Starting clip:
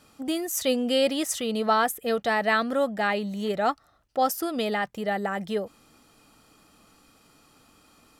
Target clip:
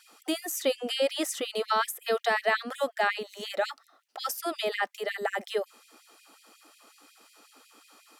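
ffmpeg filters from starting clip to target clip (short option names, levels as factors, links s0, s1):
-filter_complex "[0:a]acrossover=split=360|2000[s0][s1][s2];[s0]acompressor=threshold=0.01:ratio=4[s3];[s1]acompressor=threshold=0.0501:ratio=4[s4];[s2]acompressor=threshold=0.0158:ratio=4[s5];[s3][s4][s5]amix=inputs=3:normalize=0,afftfilt=real='re*gte(b*sr/1024,210*pow(2100/210,0.5+0.5*sin(2*PI*5.5*pts/sr)))':imag='im*gte(b*sr/1024,210*pow(2100/210,0.5+0.5*sin(2*PI*5.5*pts/sr)))':win_size=1024:overlap=0.75,volume=1.41"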